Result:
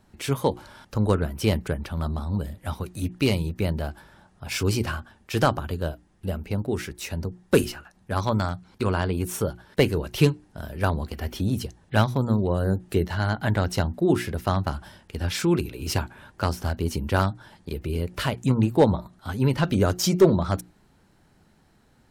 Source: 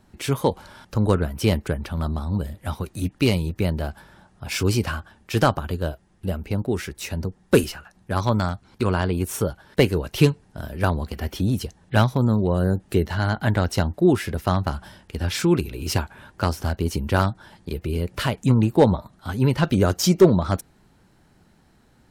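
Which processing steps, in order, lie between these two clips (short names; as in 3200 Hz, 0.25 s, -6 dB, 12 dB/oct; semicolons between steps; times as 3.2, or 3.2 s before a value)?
notches 60/120/180/240/300/360 Hz; gain -2 dB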